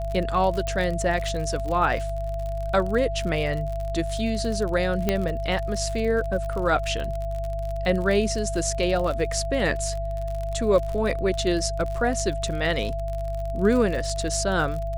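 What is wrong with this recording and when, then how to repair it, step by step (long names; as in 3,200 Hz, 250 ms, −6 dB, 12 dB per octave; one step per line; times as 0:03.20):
surface crackle 49 per second −29 dBFS
mains hum 50 Hz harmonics 3 −30 dBFS
whistle 670 Hz −30 dBFS
0:00.67: click −16 dBFS
0:05.09: click −8 dBFS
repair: click removal
hum removal 50 Hz, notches 3
notch filter 670 Hz, Q 30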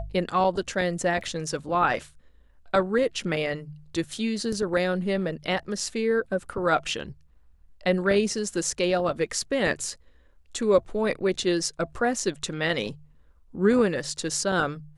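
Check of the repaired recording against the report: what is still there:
none of them is left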